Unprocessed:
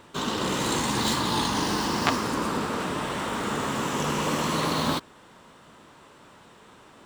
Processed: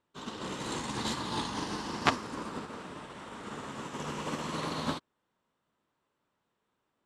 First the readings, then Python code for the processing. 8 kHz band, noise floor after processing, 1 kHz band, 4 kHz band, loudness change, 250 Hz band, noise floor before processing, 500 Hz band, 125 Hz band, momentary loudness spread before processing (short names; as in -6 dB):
-11.5 dB, -81 dBFS, -9.0 dB, -9.5 dB, -9.5 dB, -9.5 dB, -52 dBFS, -10.0 dB, -9.5 dB, 5 LU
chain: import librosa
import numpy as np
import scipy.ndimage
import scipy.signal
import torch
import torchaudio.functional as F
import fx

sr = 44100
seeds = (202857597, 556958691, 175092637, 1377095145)

y = scipy.signal.sosfilt(scipy.signal.butter(4, 11000.0, 'lowpass', fs=sr, output='sos'), x)
y = fx.high_shelf(y, sr, hz=7200.0, db=-4.0)
y = fx.upward_expand(y, sr, threshold_db=-39.0, expansion=2.5)